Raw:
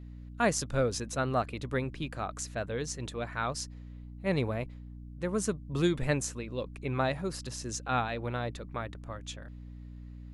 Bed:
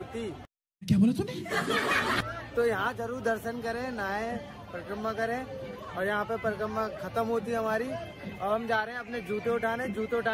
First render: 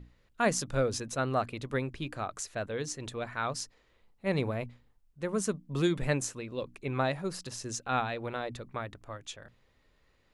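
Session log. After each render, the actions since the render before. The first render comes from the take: notches 60/120/180/240/300 Hz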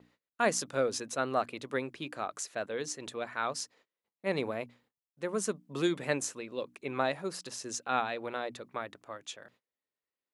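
gate -59 dBFS, range -25 dB; HPF 250 Hz 12 dB/oct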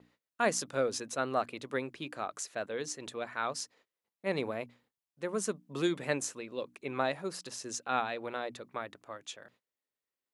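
gain -1 dB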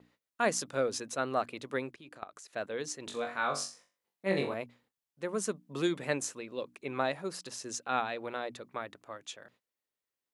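1.91–2.53 level quantiser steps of 17 dB; 3.05–4.54 flutter echo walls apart 3.6 m, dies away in 0.34 s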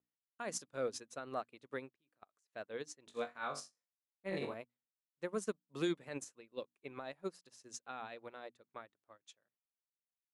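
limiter -24.5 dBFS, peak gain reduction 10 dB; upward expander 2.5:1, over -51 dBFS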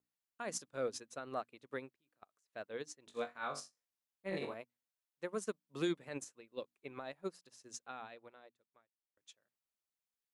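4.37–5.64 low shelf 220 Hz -5 dB; 7.84–9.17 fade out quadratic

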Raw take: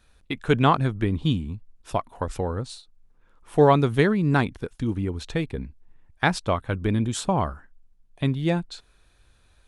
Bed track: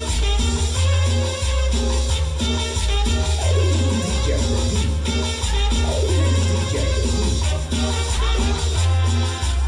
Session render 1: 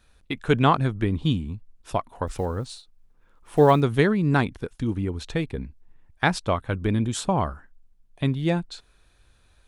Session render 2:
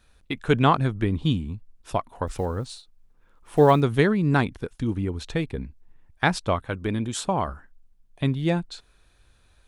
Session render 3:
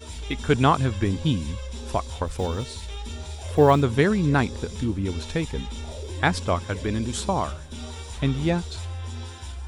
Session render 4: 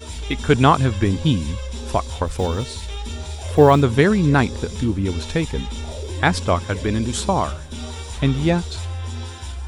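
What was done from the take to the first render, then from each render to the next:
2.27–3.82 block floating point 7-bit
6.65–7.48 low shelf 210 Hz -6.5 dB
add bed track -15.5 dB
gain +5 dB; limiter -2 dBFS, peak gain reduction 2.5 dB

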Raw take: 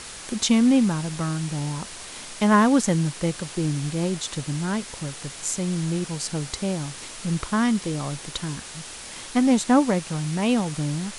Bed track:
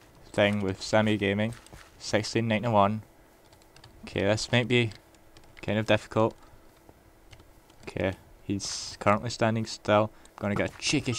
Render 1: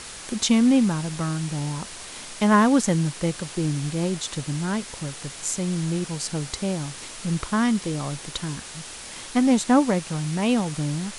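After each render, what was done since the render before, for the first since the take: nothing audible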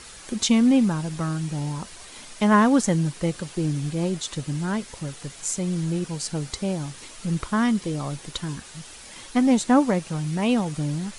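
denoiser 7 dB, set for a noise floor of -39 dBFS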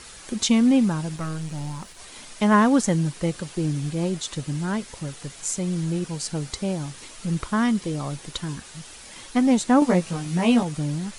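1.16–1.99 half-wave gain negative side -7 dB; 9.8–10.63 doubler 17 ms -2 dB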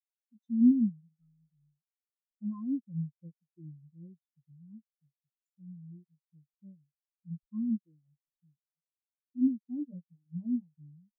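limiter -14.5 dBFS, peak gain reduction 7.5 dB; spectral expander 4:1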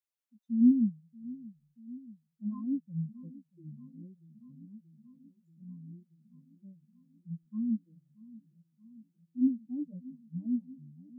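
dark delay 0.632 s, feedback 73%, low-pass 960 Hz, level -20 dB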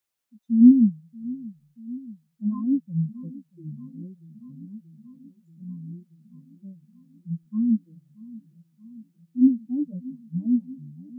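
gain +9.5 dB

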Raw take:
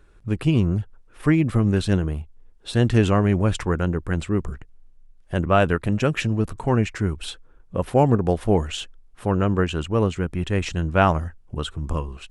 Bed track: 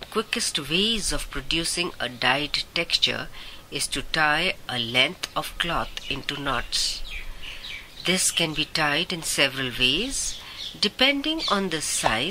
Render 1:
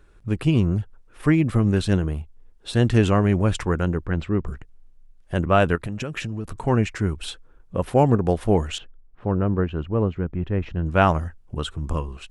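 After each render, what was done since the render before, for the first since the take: 4.06–4.46 air absorption 160 m; 5.75–6.55 compressor, threshold -25 dBFS; 8.78–10.86 tape spacing loss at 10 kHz 44 dB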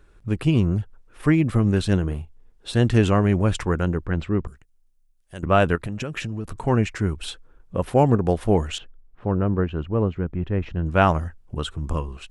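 2.04–2.72 doubler 35 ms -10.5 dB; 4.47–5.43 pre-emphasis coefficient 0.8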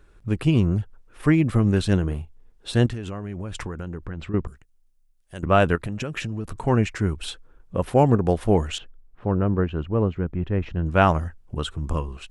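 2.86–4.34 compressor 12:1, threshold -27 dBFS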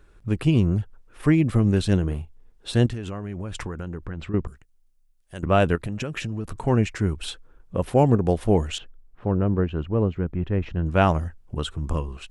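dynamic EQ 1300 Hz, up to -4 dB, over -35 dBFS, Q 1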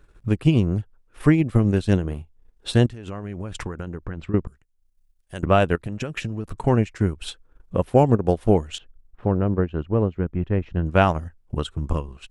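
transient shaper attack +4 dB, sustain -8 dB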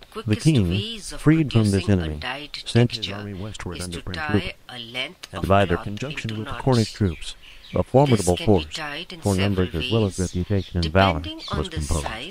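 add bed track -8 dB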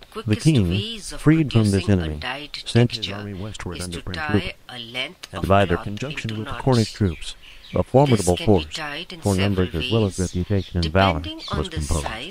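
gain +1 dB; limiter -3 dBFS, peak gain reduction 1.5 dB

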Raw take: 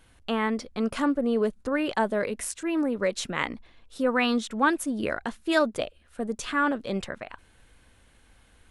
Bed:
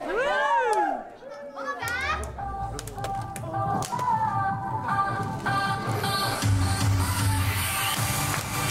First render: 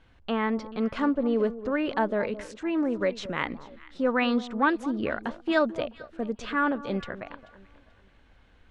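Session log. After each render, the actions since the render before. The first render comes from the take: air absorption 170 m; echo with dull and thin repeats by turns 0.218 s, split 1100 Hz, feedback 52%, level -14 dB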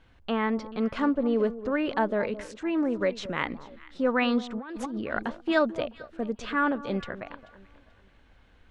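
4.56–5.23 negative-ratio compressor -34 dBFS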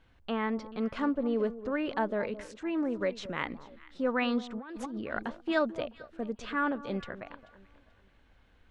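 gain -4.5 dB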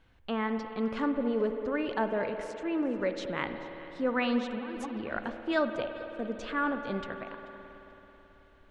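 spring tank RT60 3.9 s, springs 54 ms, chirp 45 ms, DRR 7.5 dB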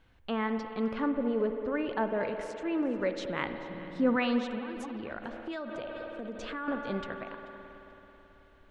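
0.93–2.21 air absorption 170 m; 3.69–4.16 bell 190 Hz +14 dB; 4.71–6.68 compressor, threshold -34 dBFS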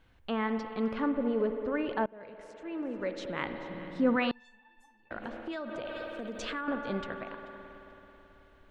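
2.06–3.69 fade in, from -23.5 dB; 4.31–5.11 resonator 890 Hz, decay 0.23 s, mix 100%; 5.85–6.61 high shelf 2200 Hz +8 dB

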